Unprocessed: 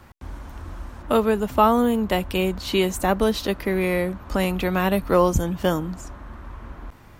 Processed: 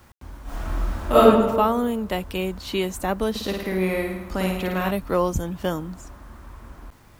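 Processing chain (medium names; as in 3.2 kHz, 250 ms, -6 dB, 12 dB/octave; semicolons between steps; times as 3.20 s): 3.30–4.91 s: flutter echo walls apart 9.2 m, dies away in 0.82 s; bit crusher 9-bit; 0.43–1.23 s: reverb throw, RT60 1.3 s, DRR -12 dB; trim -4 dB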